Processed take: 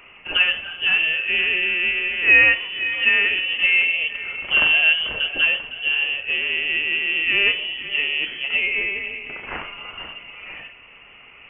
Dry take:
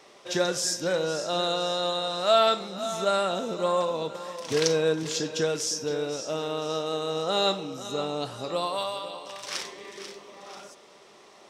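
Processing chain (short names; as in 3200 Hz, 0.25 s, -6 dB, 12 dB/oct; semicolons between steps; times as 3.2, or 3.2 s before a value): inverted band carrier 3200 Hz; dynamic EQ 110 Hz, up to -5 dB, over -56 dBFS, Q 0.72; gain +7.5 dB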